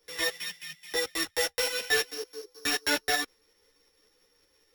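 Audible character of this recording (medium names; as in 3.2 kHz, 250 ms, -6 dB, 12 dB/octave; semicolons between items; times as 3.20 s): a buzz of ramps at a fixed pitch in blocks of 8 samples; tremolo saw up 5.4 Hz, depth 40%; a shimmering, thickened sound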